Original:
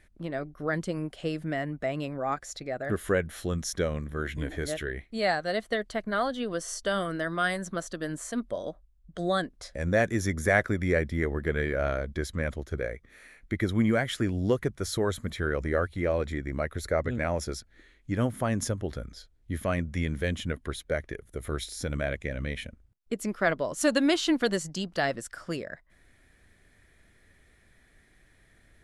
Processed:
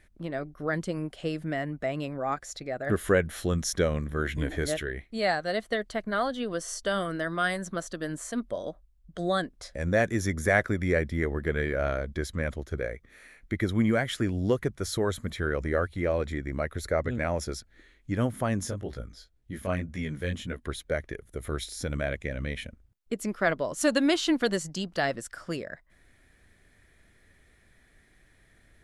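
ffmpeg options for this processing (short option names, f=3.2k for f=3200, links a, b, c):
-filter_complex "[0:a]asplit=3[a][b][c];[a]afade=t=out:st=18.57:d=0.02[d];[b]flanger=delay=16:depth=6.2:speed=1.9,afade=t=in:st=18.57:d=0.02,afade=t=out:st=20.63:d=0.02[e];[c]afade=t=in:st=20.63:d=0.02[f];[d][e][f]amix=inputs=3:normalize=0,asplit=3[g][h][i];[g]atrim=end=2.872[j];[h]atrim=start=2.868:end=4.802,asetpts=PTS-STARTPTS,volume=3dB[k];[i]atrim=start=4.798[l];[j][k]acrossfade=d=0.004:c1=hsin:c2=hsin[m];[m][l]acrossfade=d=0.004:c1=hsin:c2=hsin"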